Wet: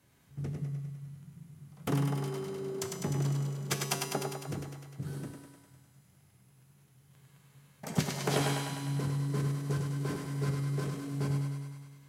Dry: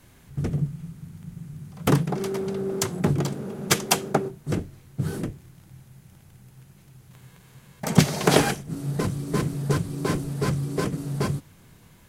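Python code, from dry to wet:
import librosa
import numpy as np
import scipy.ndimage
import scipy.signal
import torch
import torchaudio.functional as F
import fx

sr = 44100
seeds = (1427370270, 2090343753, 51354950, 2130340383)

y = scipy.signal.sosfilt(scipy.signal.butter(2, 69.0, 'highpass', fs=sr, output='sos'), x)
y = fx.comb_fb(y, sr, f0_hz=140.0, decay_s=1.5, harmonics='all', damping=0.0, mix_pct=80)
y = fx.echo_thinned(y, sr, ms=101, feedback_pct=70, hz=330.0, wet_db=-4.0)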